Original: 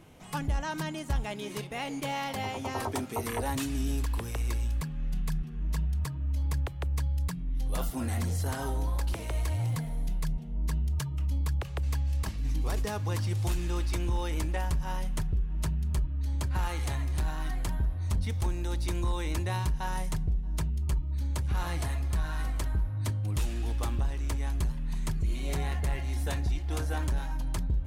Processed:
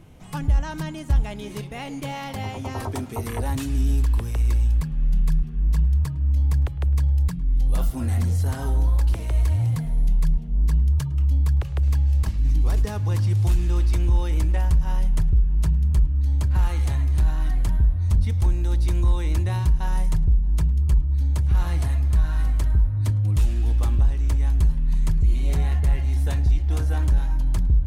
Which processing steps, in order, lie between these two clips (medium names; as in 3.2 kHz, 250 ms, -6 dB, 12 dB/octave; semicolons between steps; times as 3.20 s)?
bass shelf 170 Hz +12 dB; filtered feedback delay 106 ms, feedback 55%, low-pass 3.5 kHz, level -21 dB